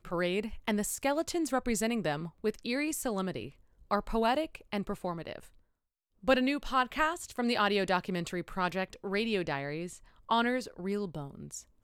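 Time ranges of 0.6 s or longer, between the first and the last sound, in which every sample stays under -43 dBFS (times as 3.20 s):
5.45–6.24 s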